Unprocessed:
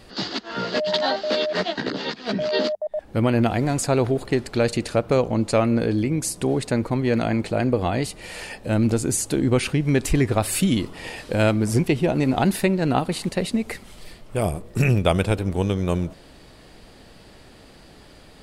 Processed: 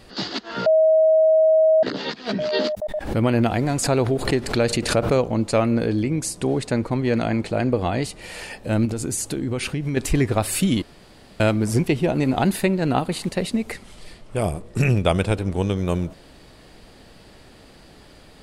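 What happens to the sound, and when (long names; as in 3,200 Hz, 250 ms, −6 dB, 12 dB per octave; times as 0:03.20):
0:00.66–0:01.83: beep over 635 Hz −12 dBFS
0:02.62–0:05.17: background raised ahead of every attack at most 87 dB per second
0:05.89–0:08.19: low-pass filter 11,000 Hz
0:08.85–0:09.97: downward compressor, threshold −21 dBFS
0:10.82–0:11.40: fill with room tone
0:12.08–0:13.20: notch filter 5,500 Hz
0:13.72–0:15.76: low-pass filter 11,000 Hz 24 dB per octave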